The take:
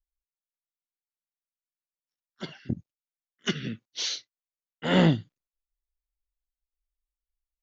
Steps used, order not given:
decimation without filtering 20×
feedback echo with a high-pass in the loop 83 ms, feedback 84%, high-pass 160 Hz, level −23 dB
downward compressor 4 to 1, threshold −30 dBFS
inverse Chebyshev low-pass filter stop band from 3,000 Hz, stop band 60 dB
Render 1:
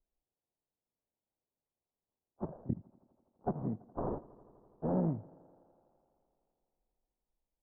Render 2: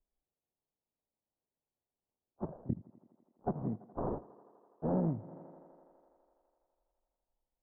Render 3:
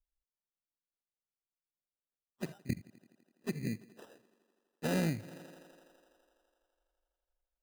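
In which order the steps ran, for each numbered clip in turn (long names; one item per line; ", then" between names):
downward compressor, then feedback echo with a high-pass in the loop, then decimation without filtering, then inverse Chebyshev low-pass filter
decimation without filtering, then feedback echo with a high-pass in the loop, then downward compressor, then inverse Chebyshev low-pass filter
feedback echo with a high-pass in the loop, then downward compressor, then inverse Chebyshev low-pass filter, then decimation without filtering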